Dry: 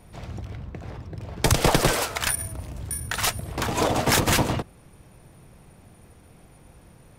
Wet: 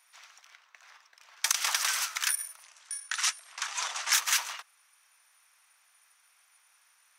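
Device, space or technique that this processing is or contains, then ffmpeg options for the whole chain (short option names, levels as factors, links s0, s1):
headphones lying on a table: -filter_complex "[0:a]highpass=f=1200:w=0.5412,highpass=f=1200:w=1.3066,equalizer=f=6000:t=o:w=0.32:g=7.5,asettb=1/sr,asplit=3[s0][s1][s2];[s0]atrim=end=2.634[s3];[s1]atrim=start=2.63:end=4.13,asetpts=PTS-STARTPTS,afade=t=in:d=0.004:c=qsin,afade=t=out:st=1.496:d=0.004:c=qsin,lowpass=f=9700:w=0.5412,lowpass=f=9700:w=1.3066[s4];[s2]atrim=start=4.126[s5];[s3][s4]acrossfade=d=0.004:c1=hsin:c2=qsin[s6];[s6][s5]acrossfade=d=0.004:c1=qsin:c2=hsin,volume=0.631"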